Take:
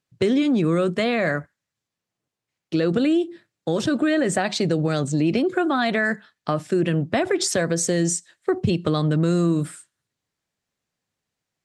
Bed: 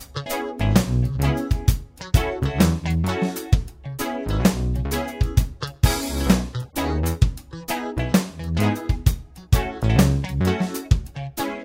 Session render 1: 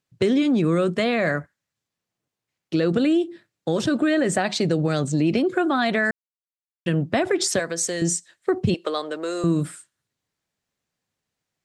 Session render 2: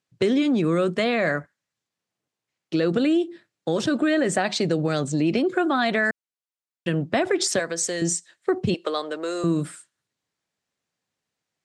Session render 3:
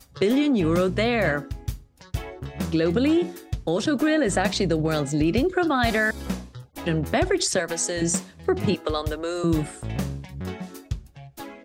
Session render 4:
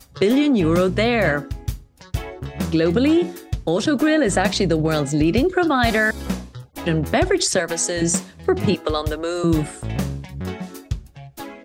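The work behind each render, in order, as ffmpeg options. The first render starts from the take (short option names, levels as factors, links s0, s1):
-filter_complex "[0:a]asettb=1/sr,asplit=3[s0][s1][s2];[s0]atrim=end=7.594[s3];[s1]atrim=start=7.59:end=8.02,asetpts=PTS-STARTPTS,afade=t=in:d=0.004:c=qsin,afade=t=out:st=0.426:d=0.004:c=qsin,highpass=f=710:p=1[s4];[s2]atrim=start=8.016[s5];[s3][s4]acrossfade=d=0.004:c1=hsin:c2=qsin[s6];[s6][s5]acrossfade=d=0.004:c1=qsin:c2=hsin,asettb=1/sr,asplit=3[s7][s8][s9];[s7]atrim=end=8.744[s10];[s8]atrim=start=8.74:end=9.44,asetpts=PTS-STARTPTS,afade=t=in:d=0.004:c=qsin,afade=t=out:st=0.696:d=0.004:c=qsin,highpass=f=400:w=0.5412,highpass=f=400:w=1.3066[s11];[s9]atrim=start=9.436[s12];[s10][s11]acrossfade=d=0.004:c1=hsin:c2=qsin[s13];[s13][s12]acrossfade=d=0.004:c1=qsin:c2=hsin,asplit=3[s14][s15][s16];[s14]atrim=end=6.11,asetpts=PTS-STARTPTS,afade=t=out:st=6.106:d=0.004:c=hsin[s17];[s15]atrim=start=6.11:end=6.86,asetpts=PTS-STARTPTS,volume=0[s18];[s16]atrim=start=6.86,asetpts=PTS-STARTPTS,afade=t=in:d=0.004:c=hsin[s19];[s17][s18][s19]concat=n=3:v=0:a=1"
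-af "lowpass=10000,lowshelf=f=95:g=-11.5"
-filter_complex "[1:a]volume=0.251[s0];[0:a][s0]amix=inputs=2:normalize=0"
-af "volume=1.58"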